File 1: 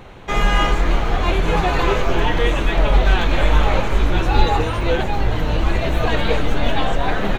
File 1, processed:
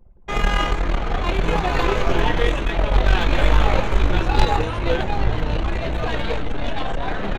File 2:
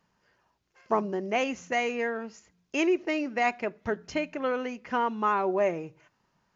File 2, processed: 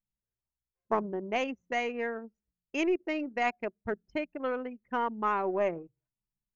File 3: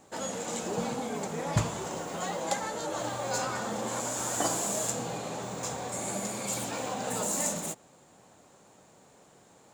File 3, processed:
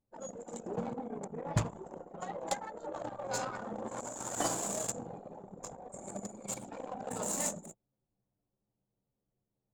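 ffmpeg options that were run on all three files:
-af "aeval=exprs='0.891*(cos(1*acos(clip(val(0)/0.891,-1,1)))-cos(1*PI/2))+0.0224*(cos(4*acos(clip(val(0)/0.891,-1,1)))-cos(4*PI/2))+0.178*(cos(6*acos(clip(val(0)/0.891,-1,1)))-cos(6*PI/2))+0.00562*(cos(7*acos(clip(val(0)/0.891,-1,1)))-cos(7*PI/2))+0.0794*(cos(8*acos(clip(val(0)/0.891,-1,1)))-cos(8*PI/2))':c=same,anlmdn=25.1,volume=-3dB"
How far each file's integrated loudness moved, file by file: -2.5, -3.5, -6.5 LU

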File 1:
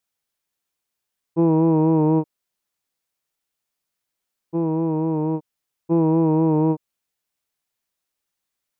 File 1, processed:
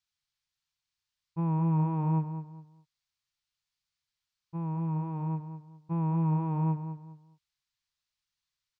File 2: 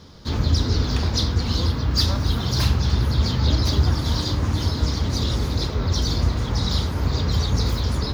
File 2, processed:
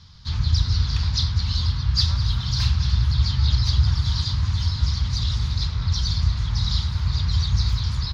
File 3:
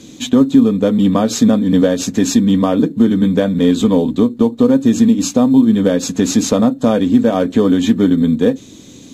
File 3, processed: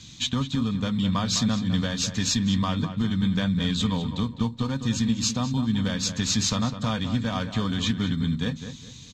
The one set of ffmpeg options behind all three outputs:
-filter_complex "[0:a]firequalizer=gain_entry='entry(120,0);entry(280,-22);entry(480,-23);entry(970,-7);entry(4400,1);entry(11000,-18)':delay=0.05:min_phase=1,asplit=2[a][b];[b]adelay=205,lowpass=f=2.7k:p=1,volume=-9.5dB,asplit=2[c][d];[d]adelay=205,lowpass=f=2.7k:p=1,volume=0.29,asplit=2[e][f];[f]adelay=205,lowpass=f=2.7k:p=1,volume=0.29[g];[a][c][e][g]amix=inputs=4:normalize=0"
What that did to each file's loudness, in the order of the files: -10.5, -0.5, -12.0 LU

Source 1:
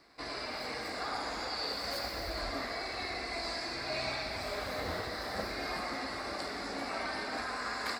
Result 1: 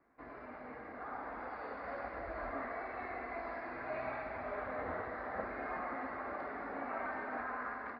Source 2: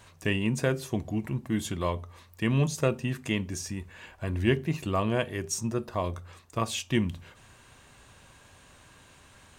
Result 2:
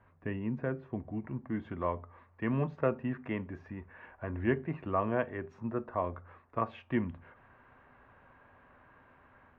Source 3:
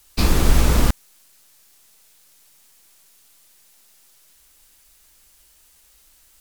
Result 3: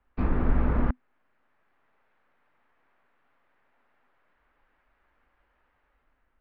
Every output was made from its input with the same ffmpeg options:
-filter_complex "[0:a]lowpass=f=1.8k:w=0.5412,lowpass=f=1.8k:w=1.3066,equalizer=f=250:w=7.7:g=7.5,acrossover=split=420[a][b];[b]dynaudnorm=f=950:g=3:m=7.5dB[c];[a][c]amix=inputs=2:normalize=0,volume=-8.5dB"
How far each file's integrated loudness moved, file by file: -5.5, -5.5, -8.5 LU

